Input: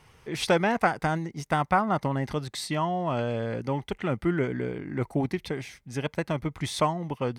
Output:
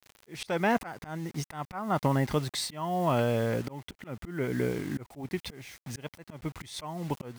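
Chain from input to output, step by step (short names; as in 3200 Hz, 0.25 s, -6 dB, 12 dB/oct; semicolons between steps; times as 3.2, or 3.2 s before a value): requantised 8-bit, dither none; auto swell 0.341 s; gain +2 dB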